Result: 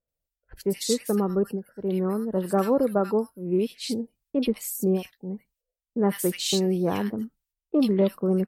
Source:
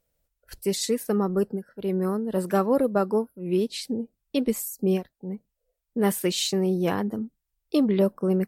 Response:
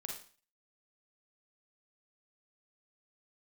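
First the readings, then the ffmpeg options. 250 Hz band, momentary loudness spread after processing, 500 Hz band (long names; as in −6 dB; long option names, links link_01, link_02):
0.0 dB, 9 LU, 0.0 dB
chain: -filter_complex "[0:a]agate=range=-12dB:threshold=-55dB:ratio=16:detection=peak,acrossover=split=1600[link_01][link_02];[link_02]adelay=80[link_03];[link_01][link_03]amix=inputs=2:normalize=0"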